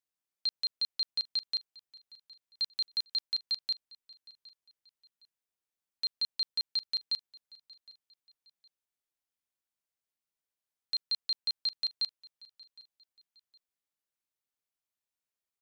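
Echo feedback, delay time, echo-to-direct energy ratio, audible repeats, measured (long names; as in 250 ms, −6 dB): 33%, 763 ms, −21.5 dB, 2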